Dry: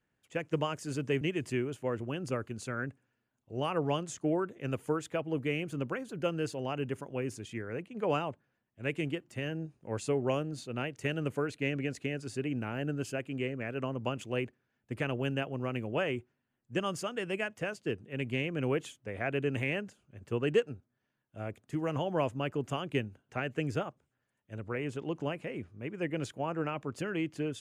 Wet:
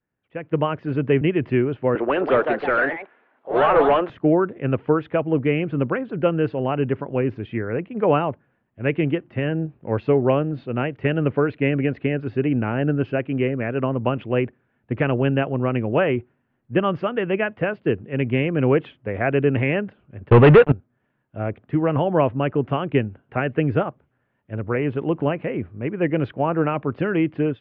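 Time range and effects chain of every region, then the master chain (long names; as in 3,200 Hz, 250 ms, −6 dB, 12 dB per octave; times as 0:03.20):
0:01.95–0:04.10: high-pass filter 390 Hz + mid-hump overdrive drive 23 dB, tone 1,300 Hz, clips at −20 dBFS + delay with pitch and tempo change per echo 214 ms, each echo +3 semitones, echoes 2, each echo −6 dB
0:20.30–0:20.72: noise gate −46 dBFS, range −8 dB + parametric band 310 Hz −6.5 dB 1.3 octaves + leveller curve on the samples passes 5
whole clip: Bessel low-pass filter 1,800 Hz, order 8; automatic gain control gain up to 15.5 dB; level −2 dB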